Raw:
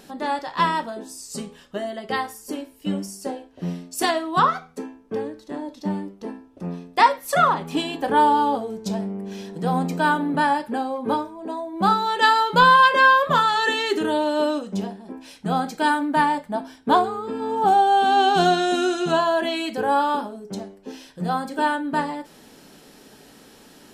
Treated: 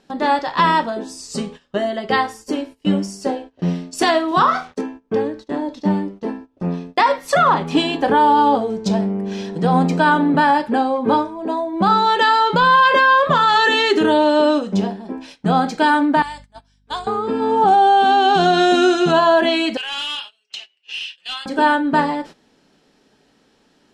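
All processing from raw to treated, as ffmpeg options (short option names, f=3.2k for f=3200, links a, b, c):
-filter_complex "[0:a]asettb=1/sr,asplit=3[a][b][c];[a]atrim=end=4.284[d];[b]atrim=start=4.28:end=4.81,asetpts=PTS-STARTPTS,afade=t=in:d=0.004:c=qsin,afade=t=out:st=0.526:d=0.004:c=qsin,equalizer=f=5.4k:t=o:w=0.31:g=5.5,acrusher=bits=7:mix=0:aa=0.5,asplit=2[e][f];[f]adelay=33,volume=-6.5dB[g];[e][g]amix=inputs=2:normalize=0,atrim=end_sample=23373[h];[c]atrim=start=4.806[i];[d][h]acrossfade=d=0.004:c1=hsin:c2=qsin[j];[j][i]acrossfade=d=0.004:c1=qsin:c2=hsin,asettb=1/sr,asplit=3[k][l][m];[k]atrim=end=16.224[n];[l]atrim=start=16.22:end=17.07,asetpts=PTS-STARTPTS,afade=t=in:d=0.004:c=qsin,afade=t=out:st=0.846:d=0.004:c=qsin,lowpass=f=9.5k:w=0.5412,lowpass=f=9.5k:w=1.3066,aderivative,aeval=exprs='val(0)+0.00316*(sin(2*PI*50*n/s)+sin(2*PI*2*50*n/s)/2+sin(2*PI*3*50*n/s)/3+sin(2*PI*4*50*n/s)/4+sin(2*PI*5*50*n/s)/5)':c=same[o];[m]atrim=start=17.066[p];[n][o]acrossfade=d=0.004:c1=hsin:c2=qsin[q];[q][p]acrossfade=d=0.004:c1=qsin:c2=hsin,asettb=1/sr,asplit=3[r][s][t];[r]atrim=end=19.774[u];[s]atrim=start=19.77:end=21.46,asetpts=PTS-STARTPTS,afade=t=in:d=0.004:c=qsin,afade=t=out:st=1.686:d=0.004:c=qsin,highpass=f=2.8k:t=q:w=13,highshelf=f=8.8k:g=-4,volume=30dB,asoftclip=hard,volume=-30dB[v];[t]atrim=start=21.456[w];[u][v]acrossfade=d=0.004:c1=hsin:c2=qsin[x];[x][w]acrossfade=d=0.004:c1=qsin:c2=hsin,agate=range=-17dB:threshold=-42dB:ratio=16:detection=peak,lowpass=5.9k,alimiter=level_in=13dB:limit=-1dB:release=50:level=0:latency=1,volume=-5dB"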